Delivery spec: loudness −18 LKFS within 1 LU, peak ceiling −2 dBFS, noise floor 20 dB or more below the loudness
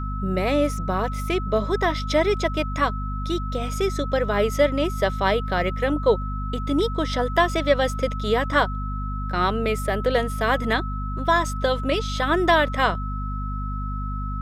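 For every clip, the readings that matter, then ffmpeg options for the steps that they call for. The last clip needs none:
mains hum 50 Hz; hum harmonics up to 250 Hz; level of the hum −26 dBFS; interfering tone 1,300 Hz; level of the tone −33 dBFS; integrated loudness −23.5 LKFS; sample peak −6.5 dBFS; target loudness −18.0 LKFS
→ -af "bandreject=frequency=50:width_type=h:width=6,bandreject=frequency=100:width_type=h:width=6,bandreject=frequency=150:width_type=h:width=6,bandreject=frequency=200:width_type=h:width=6,bandreject=frequency=250:width_type=h:width=6"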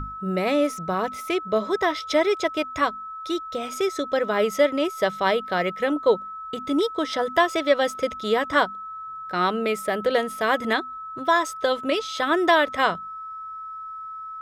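mains hum none found; interfering tone 1,300 Hz; level of the tone −33 dBFS
→ -af "bandreject=frequency=1300:width=30"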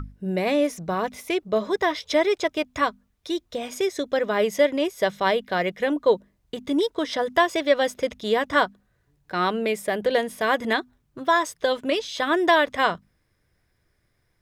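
interfering tone none found; integrated loudness −24.0 LKFS; sample peak −6.5 dBFS; target loudness −18.0 LKFS
→ -af "volume=6dB,alimiter=limit=-2dB:level=0:latency=1"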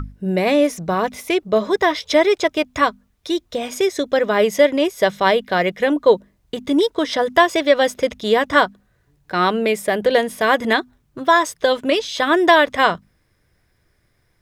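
integrated loudness −18.0 LKFS; sample peak −2.0 dBFS; background noise floor −64 dBFS

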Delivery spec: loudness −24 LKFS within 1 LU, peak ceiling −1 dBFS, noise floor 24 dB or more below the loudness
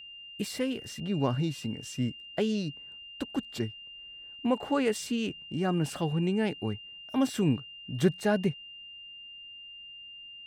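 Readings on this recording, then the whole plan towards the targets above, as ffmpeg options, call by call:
interfering tone 2,800 Hz; level of the tone −44 dBFS; integrated loudness −31.0 LKFS; sample peak −12.0 dBFS; target loudness −24.0 LKFS
→ -af "bandreject=frequency=2800:width=30"
-af "volume=7dB"

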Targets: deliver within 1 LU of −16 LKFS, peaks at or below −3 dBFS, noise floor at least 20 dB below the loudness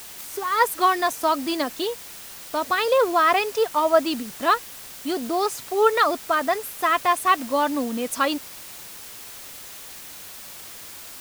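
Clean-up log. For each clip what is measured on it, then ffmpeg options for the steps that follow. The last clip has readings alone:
background noise floor −40 dBFS; target noise floor −43 dBFS; integrated loudness −22.5 LKFS; sample peak −5.0 dBFS; target loudness −16.0 LKFS
→ -af "afftdn=noise_reduction=6:noise_floor=-40"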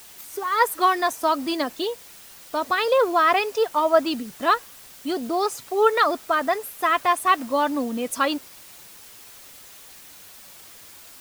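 background noise floor −46 dBFS; integrated loudness −22.5 LKFS; sample peak −5.0 dBFS; target loudness −16.0 LKFS
→ -af "volume=6.5dB,alimiter=limit=-3dB:level=0:latency=1"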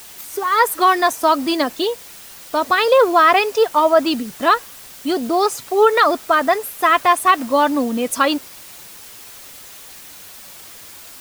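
integrated loudness −16.5 LKFS; sample peak −3.0 dBFS; background noise floor −39 dBFS

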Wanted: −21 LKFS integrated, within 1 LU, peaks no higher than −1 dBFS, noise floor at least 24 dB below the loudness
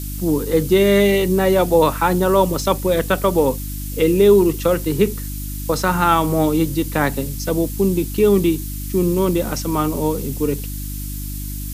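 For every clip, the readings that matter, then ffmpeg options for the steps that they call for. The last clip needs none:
mains hum 50 Hz; hum harmonics up to 300 Hz; level of the hum −26 dBFS; background noise floor −27 dBFS; target noise floor −42 dBFS; integrated loudness −18.0 LKFS; sample peak −2.5 dBFS; target loudness −21.0 LKFS
→ -af "bandreject=frequency=50:width_type=h:width=4,bandreject=frequency=100:width_type=h:width=4,bandreject=frequency=150:width_type=h:width=4,bandreject=frequency=200:width_type=h:width=4,bandreject=frequency=250:width_type=h:width=4,bandreject=frequency=300:width_type=h:width=4"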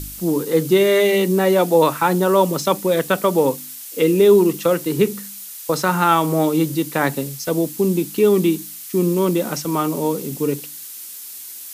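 mains hum none found; background noise floor −35 dBFS; target noise floor −42 dBFS
→ -af "afftdn=noise_reduction=7:noise_floor=-35"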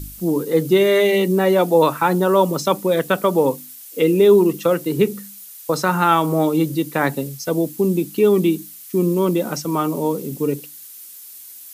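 background noise floor −39 dBFS; target noise floor −42 dBFS
→ -af "afftdn=noise_reduction=6:noise_floor=-39"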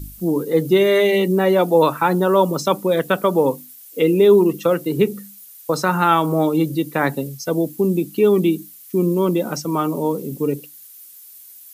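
background noise floor −43 dBFS; integrated loudness −18.5 LKFS; sample peak −3.0 dBFS; target loudness −21.0 LKFS
→ -af "volume=-2.5dB"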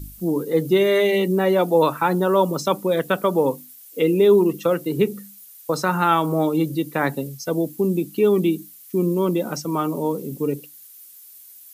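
integrated loudness −21.0 LKFS; sample peak −5.5 dBFS; background noise floor −45 dBFS

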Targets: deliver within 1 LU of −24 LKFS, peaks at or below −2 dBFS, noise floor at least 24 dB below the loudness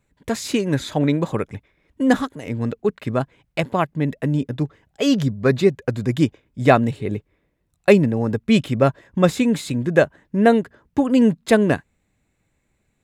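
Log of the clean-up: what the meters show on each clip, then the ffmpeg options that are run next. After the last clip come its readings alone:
integrated loudness −20.5 LKFS; sample peak −1.0 dBFS; target loudness −24.0 LKFS
→ -af "volume=-3.5dB"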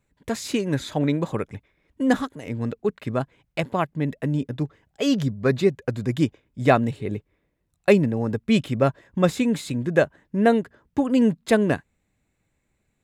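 integrated loudness −24.0 LKFS; sample peak −4.5 dBFS; background noise floor −74 dBFS

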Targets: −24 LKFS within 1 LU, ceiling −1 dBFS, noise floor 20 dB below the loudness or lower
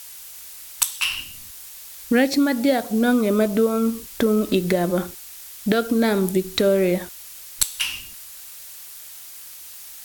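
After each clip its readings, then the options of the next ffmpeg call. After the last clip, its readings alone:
background noise floor −40 dBFS; target noise floor −41 dBFS; integrated loudness −21.0 LKFS; sample peak −2.0 dBFS; target loudness −24.0 LKFS
→ -af "afftdn=noise_reduction=6:noise_floor=-40"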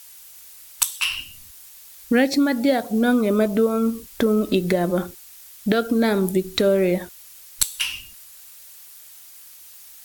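background noise floor −45 dBFS; integrated loudness −21.0 LKFS; sample peak −2.0 dBFS; target loudness −24.0 LKFS
→ -af "volume=-3dB"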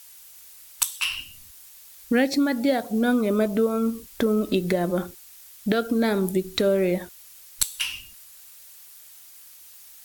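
integrated loudness −24.0 LKFS; sample peak −5.0 dBFS; background noise floor −48 dBFS

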